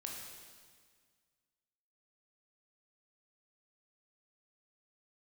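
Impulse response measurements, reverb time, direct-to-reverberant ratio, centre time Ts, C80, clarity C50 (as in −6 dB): 1.8 s, −1.0 dB, 78 ms, 3.0 dB, 1.5 dB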